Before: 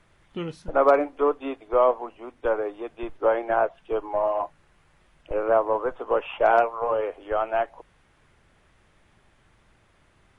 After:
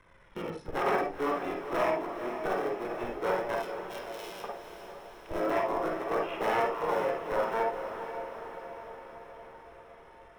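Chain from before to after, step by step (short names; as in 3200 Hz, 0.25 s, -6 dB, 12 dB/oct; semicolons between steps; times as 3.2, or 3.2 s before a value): cycle switcher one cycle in 3, muted; 3.55–4.44 steep high-pass 2600 Hz; compressor 1.5:1, threshold -44 dBFS, peak gain reduction 11 dB; flange 0.28 Hz, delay 1.9 ms, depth 1.2 ms, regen +42%; wavefolder -28 dBFS; diffused feedback echo 0.468 s, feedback 64%, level -9 dB; reverb RT60 0.25 s, pre-delay 49 ms, DRR 0.5 dB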